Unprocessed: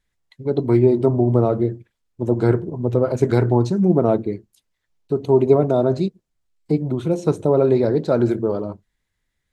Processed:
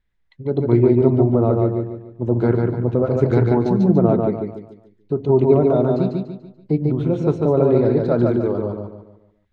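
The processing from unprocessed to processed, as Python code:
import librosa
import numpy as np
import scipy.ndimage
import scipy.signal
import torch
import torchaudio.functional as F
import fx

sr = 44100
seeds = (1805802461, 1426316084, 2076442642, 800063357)

p1 = scipy.signal.sosfilt(scipy.signal.butter(2, 3400.0, 'lowpass', fs=sr, output='sos'), x)
p2 = fx.low_shelf(p1, sr, hz=180.0, db=5.5)
p3 = p2 + fx.echo_feedback(p2, sr, ms=145, feedback_pct=38, wet_db=-3.0, dry=0)
y = p3 * 10.0 ** (-2.0 / 20.0)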